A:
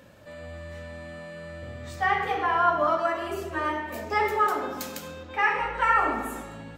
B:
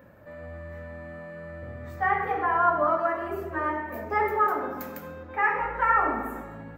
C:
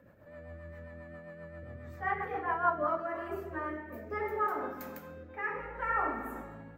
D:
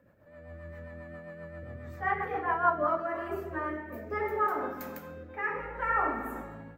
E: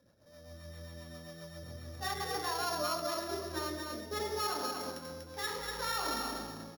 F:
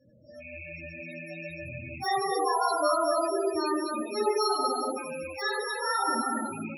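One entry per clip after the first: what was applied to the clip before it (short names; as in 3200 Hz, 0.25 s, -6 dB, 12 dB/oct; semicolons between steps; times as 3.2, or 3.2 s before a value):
band shelf 5400 Hz -15.5 dB 2.3 oct
rotary speaker horn 7.5 Hz, later 0.65 Hz, at 2.37; gain -5 dB
AGC gain up to 7 dB; gain -4 dB
sample sorter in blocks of 8 samples; limiter -22.5 dBFS, peak gain reduction 10 dB; on a send: echo 0.242 s -4.5 dB; on the sum: gain -4.5 dB
rattling part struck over -54 dBFS, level -36 dBFS; non-linear reverb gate 0.31 s falling, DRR -7 dB; loudest bins only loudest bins 16; gain +3 dB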